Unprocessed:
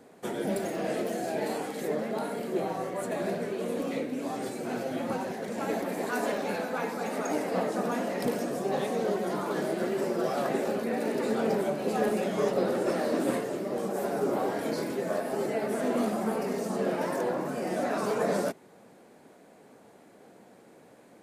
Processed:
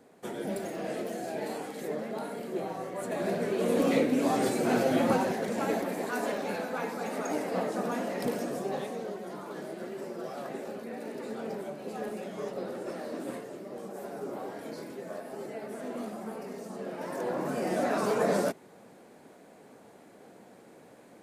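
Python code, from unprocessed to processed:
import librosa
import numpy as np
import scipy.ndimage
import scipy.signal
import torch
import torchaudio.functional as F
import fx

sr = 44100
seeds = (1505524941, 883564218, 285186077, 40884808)

y = fx.gain(x, sr, db=fx.line((2.88, -4.0), (3.88, 7.0), (5.03, 7.0), (6.07, -2.0), (8.57, -2.0), (9.13, -9.5), (16.91, -9.5), (17.5, 1.0)))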